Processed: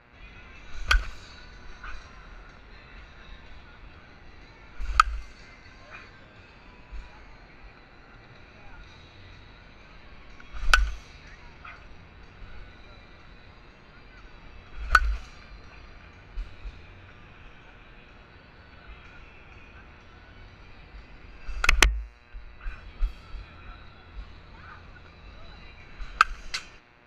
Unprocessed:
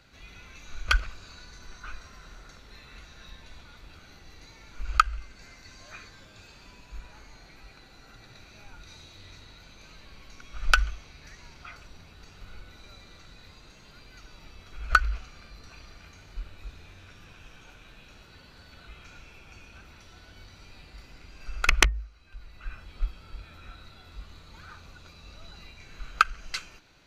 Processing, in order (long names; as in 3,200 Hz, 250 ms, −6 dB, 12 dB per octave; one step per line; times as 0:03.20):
hum with harmonics 120 Hz, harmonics 23, −61 dBFS 0 dB per octave
low-pass that shuts in the quiet parts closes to 2,300 Hz, open at −27 dBFS
level +1.5 dB